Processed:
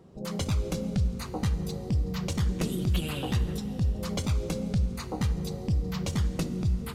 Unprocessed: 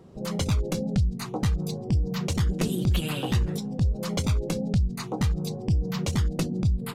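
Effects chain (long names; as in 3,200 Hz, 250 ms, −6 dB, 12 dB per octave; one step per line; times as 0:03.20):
dense smooth reverb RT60 3.6 s, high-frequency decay 0.8×, DRR 10.5 dB
level −3.5 dB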